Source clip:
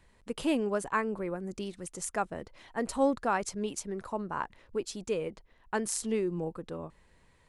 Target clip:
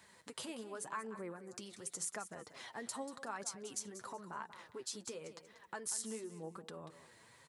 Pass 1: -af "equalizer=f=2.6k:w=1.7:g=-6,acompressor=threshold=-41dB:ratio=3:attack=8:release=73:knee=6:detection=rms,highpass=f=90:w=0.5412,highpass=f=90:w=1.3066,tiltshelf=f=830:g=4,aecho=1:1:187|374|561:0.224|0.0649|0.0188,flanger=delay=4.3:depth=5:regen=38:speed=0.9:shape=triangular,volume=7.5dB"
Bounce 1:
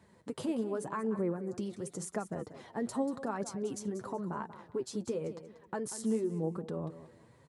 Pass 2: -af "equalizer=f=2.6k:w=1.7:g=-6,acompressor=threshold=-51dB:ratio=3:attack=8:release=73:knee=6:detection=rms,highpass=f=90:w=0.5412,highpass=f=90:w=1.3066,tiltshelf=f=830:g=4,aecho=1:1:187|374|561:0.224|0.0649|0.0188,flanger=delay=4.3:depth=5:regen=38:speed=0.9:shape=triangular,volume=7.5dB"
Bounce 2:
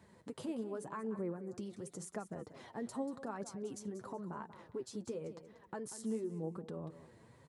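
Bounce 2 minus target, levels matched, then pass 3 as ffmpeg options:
1000 Hz band -2.5 dB
-af "equalizer=f=2.6k:w=1.7:g=-6,acompressor=threshold=-51dB:ratio=3:attack=8:release=73:knee=6:detection=rms,highpass=f=90:w=0.5412,highpass=f=90:w=1.3066,tiltshelf=f=830:g=-6,aecho=1:1:187|374|561:0.224|0.0649|0.0188,flanger=delay=4.3:depth=5:regen=38:speed=0.9:shape=triangular,volume=7.5dB"

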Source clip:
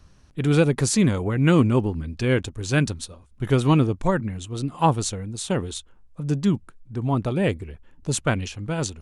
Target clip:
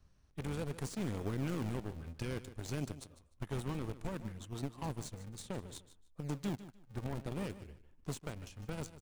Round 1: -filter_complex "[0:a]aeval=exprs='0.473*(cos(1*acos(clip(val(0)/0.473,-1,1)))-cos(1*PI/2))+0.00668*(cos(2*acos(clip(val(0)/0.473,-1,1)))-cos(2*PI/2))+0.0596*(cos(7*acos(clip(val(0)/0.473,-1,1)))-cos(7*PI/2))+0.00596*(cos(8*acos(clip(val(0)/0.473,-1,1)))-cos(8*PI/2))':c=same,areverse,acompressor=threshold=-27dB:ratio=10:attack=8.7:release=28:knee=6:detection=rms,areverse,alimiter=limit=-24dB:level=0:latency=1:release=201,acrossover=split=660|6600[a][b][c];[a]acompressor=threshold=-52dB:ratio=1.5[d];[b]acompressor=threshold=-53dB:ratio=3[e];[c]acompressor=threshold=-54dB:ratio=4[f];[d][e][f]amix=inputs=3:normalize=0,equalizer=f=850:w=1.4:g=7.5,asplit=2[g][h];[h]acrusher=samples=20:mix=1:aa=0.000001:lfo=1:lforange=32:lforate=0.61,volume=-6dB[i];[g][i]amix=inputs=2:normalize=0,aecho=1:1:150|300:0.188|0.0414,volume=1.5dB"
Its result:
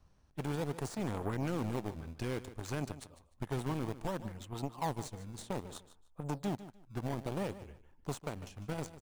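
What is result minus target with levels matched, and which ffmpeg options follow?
decimation with a swept rate: distortion -8 dB; 1000 Hz band +4.5 dB
-filter_complex "[0:a]aeval=exprs='0.473*(cos(1*acos(clip(val(0)/0.473,-1,1)))-cos(1*PI/2))+0.00668*(cos(2*acos(clip(val(0)/0.473,-1,1)))-cos(2*PI/2))+0.0596*(cos(7*acos(clip(val(0)/0.473,-1,1)))-cos(7*PI/2))+0.00596*(cos(8*acos(clip(val(0)/0.473,-1,1)))-cos(8*PI/2))':c=same,areverse,acompressor=threshold=-27dB:ratio=10:attack=8.7:release=28:knee=6:detection=rms,areverse,alimiter=limit=-24dB:level=0:latency=1:release=201,acrossover=split=660|6600[a][b][c];[a]acompressor=threshold=-52dB:ratio=1.5[d];[b]acompressor=threshold=-53dB:ratio=3[e];[c]acompressor=threshold=-54dB:ratio=4[f];[d][e][f]amix=inputs=3:normalize=0,asplit=2[g][h];[h]acrusher=samples=74:mix=1:aa=0.000001:lfo=1:lforange=118:lforate=0.61,volume=-6dB[i];[g][i]amix=inputs=2:normalize=0,aecho=1:1:150|300:0.188|0.0414,volume=1.5dB"

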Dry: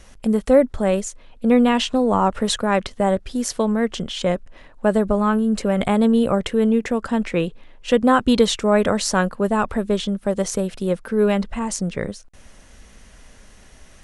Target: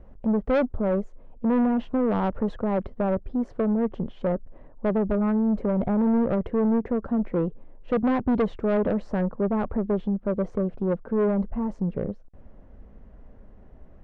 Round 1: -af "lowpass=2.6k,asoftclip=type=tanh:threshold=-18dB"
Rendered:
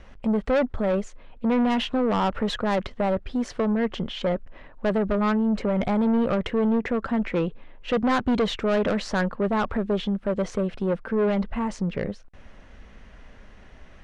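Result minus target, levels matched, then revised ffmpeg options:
2000 Hz band +7.5 dB
-af "lowpass=660,asoftclip=type=tanh:threshold=-18dB"

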